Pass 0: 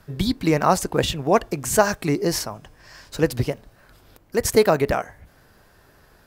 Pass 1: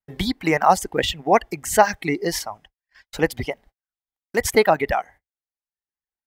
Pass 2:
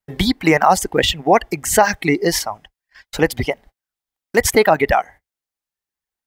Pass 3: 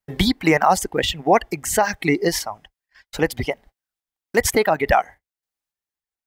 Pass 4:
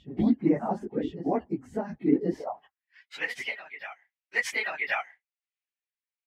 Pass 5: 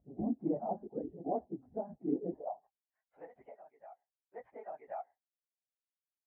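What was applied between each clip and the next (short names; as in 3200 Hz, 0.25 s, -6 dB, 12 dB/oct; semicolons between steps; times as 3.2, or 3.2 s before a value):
reverb removal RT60 1.6 s; gate -46 dBFS, range -44 dB; thirty-one-band EQ 125 Hz -12 dB, 800 Hz +9 dB, 2000 Hz +11 dB, 3150 Hz +5 dB; gain -1 dB
limiter -8 dBFS, peak gain reduction 7 dB; gain +6.5 dB
random-step tremolo
phase scrambler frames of 50 ms; reverse echo 1.08 s -11.5 dB; band-pass sweep 250 Hz -> 2400 Hz, 2.28–2.86
ladder low-pass 790 Hz, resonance 55%; gain -2.5 dB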